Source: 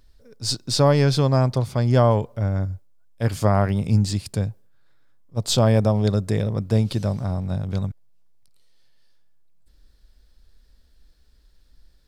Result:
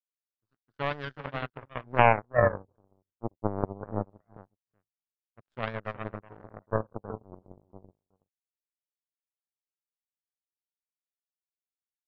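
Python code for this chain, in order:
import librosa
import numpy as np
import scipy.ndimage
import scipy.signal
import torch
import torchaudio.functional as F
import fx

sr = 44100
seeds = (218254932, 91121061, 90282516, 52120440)

y = scipy.signal.sosfilt(scipy.signal.butter(2, 4800.0, 'lowpass', fs=sr, output='sos'), x)
y = fx.echo_feedback(y, sr, ms=373, feedback_pct=18, wet_db=-7.0)
y = fx.filter_lfo_lowpass(y, sr, shape='sine', hz=0.23, low_hz=360.0, high_hz=1600.0, q=6.8)
y = fx.power_curve(y, sr, exponent=3.0)
y = F.gain(torch.from_numpy(y), -1.0).numpy()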